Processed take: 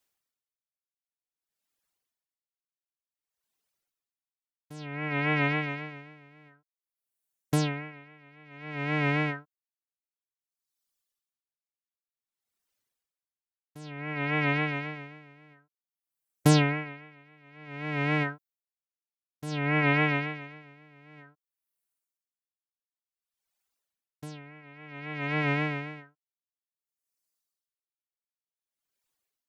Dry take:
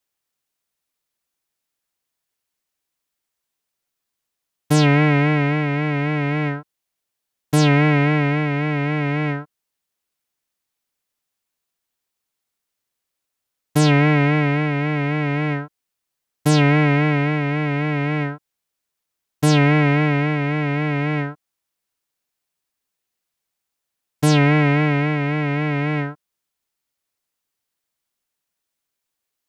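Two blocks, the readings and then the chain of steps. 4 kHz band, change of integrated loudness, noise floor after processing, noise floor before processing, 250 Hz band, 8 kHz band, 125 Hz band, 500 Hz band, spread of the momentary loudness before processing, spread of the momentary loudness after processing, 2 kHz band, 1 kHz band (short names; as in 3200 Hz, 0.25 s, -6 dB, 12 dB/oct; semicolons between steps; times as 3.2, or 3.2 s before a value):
-10.0 dB, -9.5 dB, under -85 dBFS, -81 dBFS, -13.5 dB, -10.5 dB, -14.0 dB, -12.5 dB, 10 LU, 21 LU, -8.5 dB, -11.0 dB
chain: reverb removal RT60 1.9 s; limiter -11.5 dBFS, peak gain reduction 4 dB; dB-linear tremolo 0.55 Hz, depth 30 dB; gain +1.5 dB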